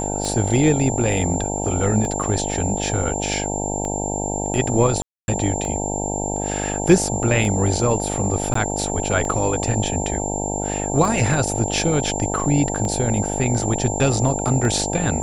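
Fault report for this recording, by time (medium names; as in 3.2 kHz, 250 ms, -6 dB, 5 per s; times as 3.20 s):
buzz 50 Hz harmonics 18 -26 dBFS
tick 33 1/3 rpm -14 dBFS
whine 7.3 kHz -27 dBFS
5.02–5.28 s: dropout 261 ms
8.54–8.55 s: dropout 14 ms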